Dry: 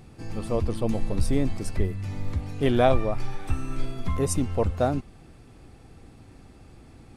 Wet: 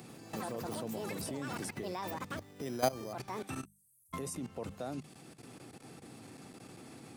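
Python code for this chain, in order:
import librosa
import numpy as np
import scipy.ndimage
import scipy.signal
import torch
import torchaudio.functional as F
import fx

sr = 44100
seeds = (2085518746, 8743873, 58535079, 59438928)

y = scipy.signal.sosfilt(scipy.signal.butter(4, 130.0, 'highpass', fs=sr, output='sos'), x)
y = fx.echo_pitch(y, sr, ms=87, semitones=7, count=3, db_per_echo=-6.0)
y = fx.high_shelf(y, sr, hz=5800.0, db=9.0)
y = fx.resample_bad(y, sr, factor=8, down='filtered', up='hold', at=(2.37, 3.13))
y = fx.cheby2_bandstop(y, sr, low_hz=210.0, high_hz=2900.0, order=4, stop_db=70, at=(3.65, 4.13))
y = fx.level_steps(y, sr, step_db=18)
y = fx.hum_notches(y, sr, base_hz=50, count=4)
y = fx.band_squash(y, sr, depth_pct=40)
y = F.gain(torch.from_numpy(y), -3.0).numpy()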